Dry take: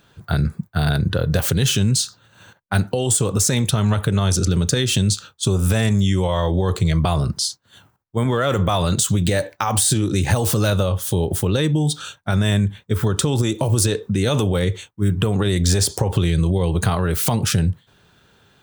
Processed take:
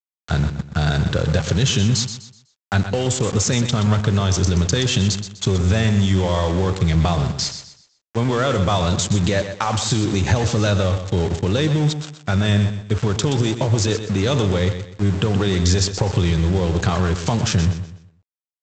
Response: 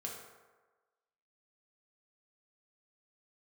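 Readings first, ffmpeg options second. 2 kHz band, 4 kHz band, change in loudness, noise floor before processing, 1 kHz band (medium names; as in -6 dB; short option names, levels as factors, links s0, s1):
+1.0 dB, +0.5 dB, 0.0 dB, -58 dBFS, +0.5 dB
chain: -af "aresample=16000,aeval=exprs='val(0)*gte(abs(val(0)),0.0473)':c=same,aresample=44100,aecho=1:1:125|250|375|500:0.316|0.101|0.0324|0.0104"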